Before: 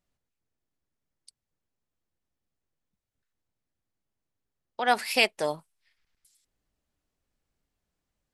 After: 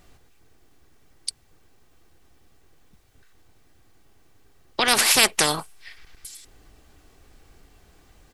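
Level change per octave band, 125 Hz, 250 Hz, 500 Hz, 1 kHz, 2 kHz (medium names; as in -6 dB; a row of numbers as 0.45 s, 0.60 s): +11.0 dB, +6.0 dB, +1.0 dB, +2.5 dB, +5.5 dB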